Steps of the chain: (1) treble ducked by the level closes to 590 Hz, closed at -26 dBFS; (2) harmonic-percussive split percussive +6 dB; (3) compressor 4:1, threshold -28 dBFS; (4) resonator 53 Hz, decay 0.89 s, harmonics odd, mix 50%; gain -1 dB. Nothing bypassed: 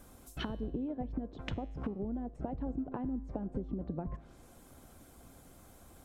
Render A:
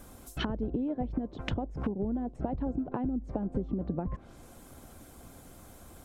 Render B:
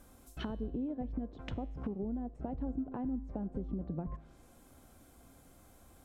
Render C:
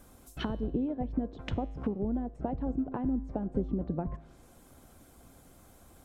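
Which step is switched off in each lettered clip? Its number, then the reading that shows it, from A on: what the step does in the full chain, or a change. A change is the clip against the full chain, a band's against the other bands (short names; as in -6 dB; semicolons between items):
4, loudness change +5.0 LU; 2, 2 kHz band -3.5 dB; 3, mean gain reduction 2.5 dB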